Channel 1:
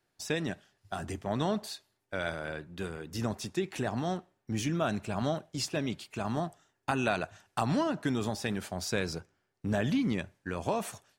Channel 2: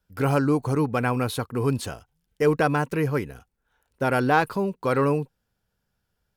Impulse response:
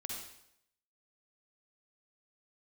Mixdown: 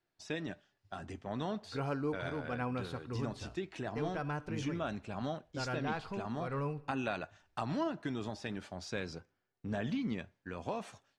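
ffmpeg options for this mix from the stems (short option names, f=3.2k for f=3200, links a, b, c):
-filter_complex "[0:a]volume=-2.5dB,asplit=2[a][b];[1:a]asubboost=boost=6:cutoff=100,adelay=1550,volume=-10dB,asplit=2[c][d];[d]volume=-14.5dB[e];[b]apad=whole_len=349226[f];[c][f]sidechaincompress=threshold=-36dB:ratio=8:attack=34:release=273[g];[2:a]atrim=start_sample=2205[h];[e][h]afir=irnorm=-1:irlink=0[i];[a][g][i]amix=inputs=3:normalize=0,lowpass=5.3k,flanger=delay=2.9:depth=1.6:regen=79:speed=0.25:shape=triangular"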